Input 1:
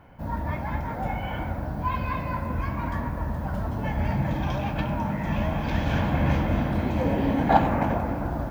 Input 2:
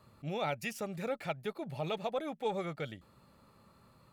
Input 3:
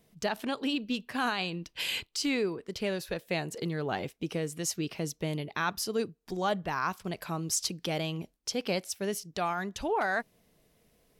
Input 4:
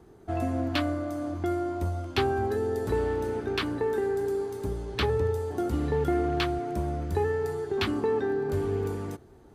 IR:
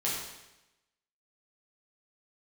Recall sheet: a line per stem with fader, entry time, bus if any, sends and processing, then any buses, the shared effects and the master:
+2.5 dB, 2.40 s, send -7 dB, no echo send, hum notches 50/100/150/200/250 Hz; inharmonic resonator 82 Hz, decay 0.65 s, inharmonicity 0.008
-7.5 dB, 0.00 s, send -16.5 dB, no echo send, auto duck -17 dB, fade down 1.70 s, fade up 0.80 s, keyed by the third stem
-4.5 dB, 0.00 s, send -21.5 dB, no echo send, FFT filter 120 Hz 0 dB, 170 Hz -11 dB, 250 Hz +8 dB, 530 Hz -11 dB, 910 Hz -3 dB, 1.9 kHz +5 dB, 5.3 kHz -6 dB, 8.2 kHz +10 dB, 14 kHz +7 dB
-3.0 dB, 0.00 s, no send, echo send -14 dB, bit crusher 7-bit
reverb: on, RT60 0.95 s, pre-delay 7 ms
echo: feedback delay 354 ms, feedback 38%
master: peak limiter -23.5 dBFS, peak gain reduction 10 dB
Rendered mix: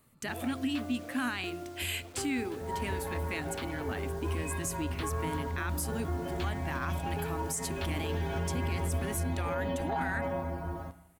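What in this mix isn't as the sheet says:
stem 4 -3.0 dB -> -12.5 dB; reverb return -8.0 dB

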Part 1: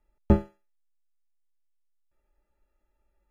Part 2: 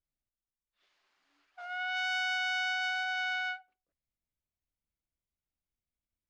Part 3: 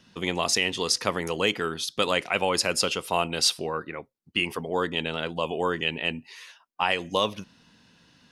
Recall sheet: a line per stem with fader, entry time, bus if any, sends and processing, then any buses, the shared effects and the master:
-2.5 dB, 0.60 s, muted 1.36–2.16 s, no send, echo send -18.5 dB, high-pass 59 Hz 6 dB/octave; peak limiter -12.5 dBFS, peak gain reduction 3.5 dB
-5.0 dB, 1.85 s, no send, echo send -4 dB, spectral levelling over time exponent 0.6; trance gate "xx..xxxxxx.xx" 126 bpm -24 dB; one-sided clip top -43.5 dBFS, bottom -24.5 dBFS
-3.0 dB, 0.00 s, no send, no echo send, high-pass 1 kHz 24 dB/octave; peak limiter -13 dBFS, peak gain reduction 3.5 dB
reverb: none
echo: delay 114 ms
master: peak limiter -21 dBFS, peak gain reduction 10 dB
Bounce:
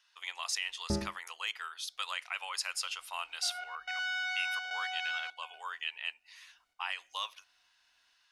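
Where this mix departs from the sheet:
stem 2: missing one-sided clip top -43.5 dBFS, bottom -24.5 dBFS; stem 3 -3.0 dB -> -9.0 dB

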